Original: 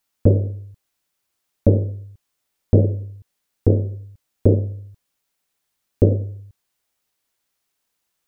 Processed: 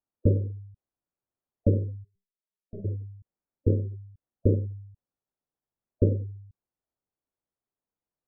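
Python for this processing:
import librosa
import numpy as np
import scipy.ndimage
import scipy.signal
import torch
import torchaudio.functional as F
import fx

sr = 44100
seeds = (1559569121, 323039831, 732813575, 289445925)

y = scipy.signal.sosfilt(scipy.signal.bessel(2, 660.0, 'lowpass', norm='mag', fs=sr, output='sos'), x)
y = fx.stiff_resonator(y, sr, f0_hz=190.0, decay_s=0.3, stiffness=0.03, at=(2.03, 2.84), fade=0.02)
y = fx.spec_gate(y, sr, threshold_db=-25, keep='strong')
y = F.gain(torch.from_numpy(y), -7.0).numpy()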